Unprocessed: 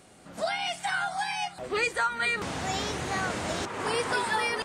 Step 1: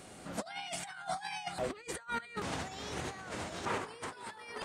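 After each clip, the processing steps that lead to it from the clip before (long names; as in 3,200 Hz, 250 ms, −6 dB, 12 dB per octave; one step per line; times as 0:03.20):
compressor whose output falls as the input rises −36 dBFS, ratio −0.5
level −3.5 dB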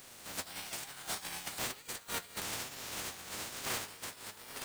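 compressing power law on the bin magnitudes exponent 0.23
flanger 1.1 Hz, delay 7 ms, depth 4.9 ms, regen +43%
level +2.5 dB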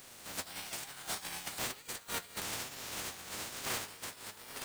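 no processing that can be heard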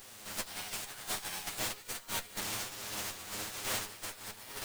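lower of the sound and its delayed copy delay 9.6 ms
level +3.5 dB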